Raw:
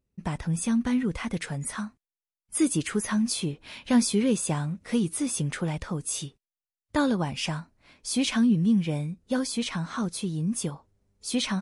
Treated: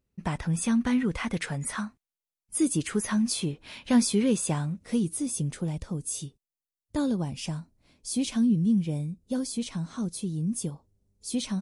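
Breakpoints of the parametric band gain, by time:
parametric band 1,600 Hz 2.6 octaves
0:01.76 +2.5 dB
0:02.60 −8.5 dB
0:02.97 −1.5 dB
0:04.55 −1.5 dB
0:05.23 −13 dB

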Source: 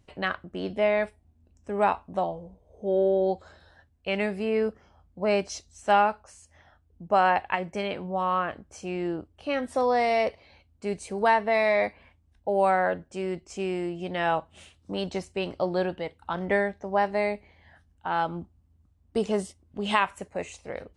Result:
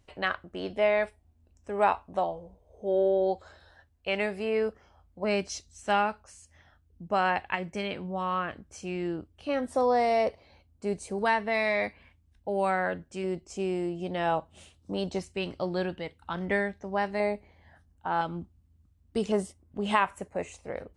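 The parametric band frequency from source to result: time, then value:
parametric band −6 dB 1.7 octaves
180 Hz
from 0:05.24 720 Hz
from 0:09.49 2,500 Hz
from 0:11.19 680 Hz
from 0:13.24 1,900 Hz
from 0:15.19 680 Hz
from 0:17.20 2,800 Hz
from 0:18.21 730 Hz
from 0:19.32 3,900 Hz

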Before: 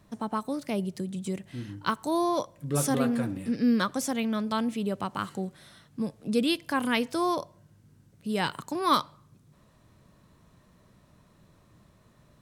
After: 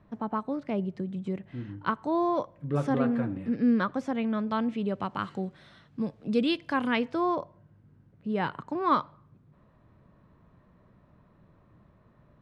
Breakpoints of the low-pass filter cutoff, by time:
0:04.21 2,000 Hz
0:05.24 3,500 Hz
0:06.75 3,500 Hz
0:07.35 1,800 Hz

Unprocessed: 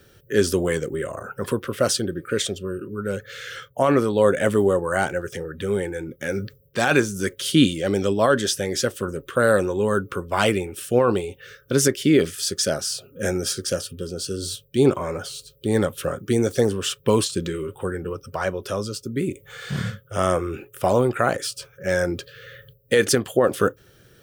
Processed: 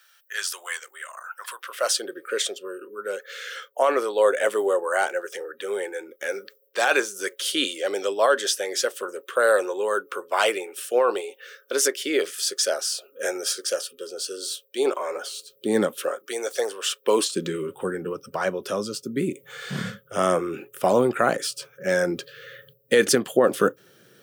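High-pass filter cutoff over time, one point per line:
high-pass filter 24 dB per octave
0:01.54 1,000 Hz
0:02.04 430 Hz
0:15.11 430 Hz
0:15.82 180 Hz
0:16.22 520 Hz
0:16.86 520 Hz
0:17.51 160 Hz

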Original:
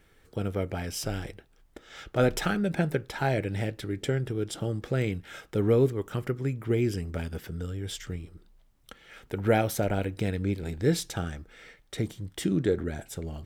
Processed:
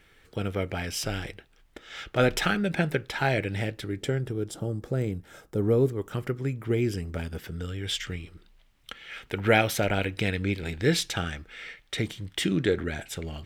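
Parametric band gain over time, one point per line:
parametric band 2,600 Hz 1.9 octaves
0:03.39 +7.5 dB
0:04.26 −1.5 dB
0:04.65 −10 dB
0:05.55 −10 dB
0:06.21 +2 dB
0:07.36 +2 dB
0:07.80 +11.5 dB

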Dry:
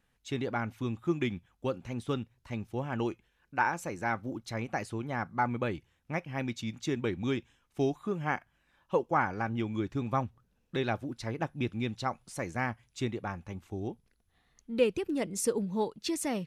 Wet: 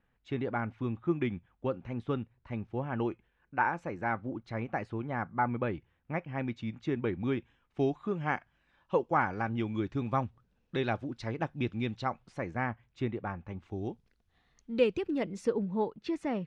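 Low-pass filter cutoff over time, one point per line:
0:07.29 2,200 Hz
0:08.33 4,500 Hz
0:11.82 4,500 Hz
0:12.52 2,200 Hz
0:13.45 2,200 Hz
0:13.88 5,600 Hz
0:14.75 5,600 Hz
0:15.68 2,100 Hz

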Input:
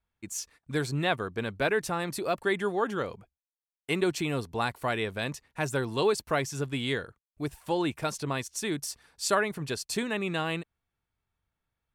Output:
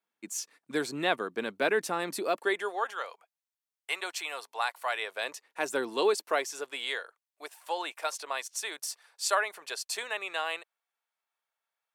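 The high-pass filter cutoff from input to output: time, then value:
high-pass filter 24 dB per octave
0:02.22 230 Hz
0:02.91 660 Hz
0:04.89 660 Hz
0:05.83 260 Hz
0:06.97 570 Hz

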